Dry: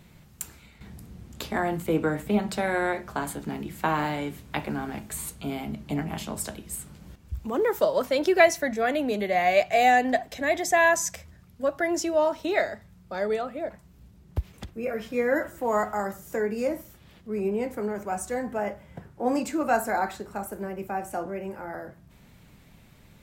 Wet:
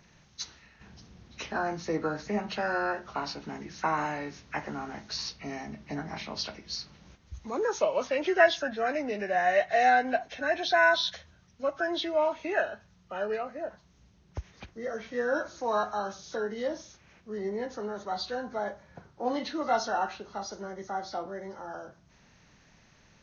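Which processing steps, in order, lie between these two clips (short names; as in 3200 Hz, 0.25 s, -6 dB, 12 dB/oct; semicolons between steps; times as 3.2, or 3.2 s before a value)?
nonlinear frequency compression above 1200 Hz 1.5:1; low shelf 480 Hz -9.5 dB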